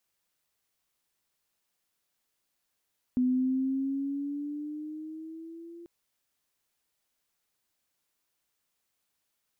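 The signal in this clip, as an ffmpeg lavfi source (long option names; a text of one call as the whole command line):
ffmpeg -f lavfi -i "aevalsrc='pow(10,(-22-21.5*t/2.69)/20)*sin(2*PI*250*2.69/(5.5*log(2)/12)*(exp(5.5*log(2)/12*t/2.69)-1))':duration=2.69:sample_rate=44100" out.wav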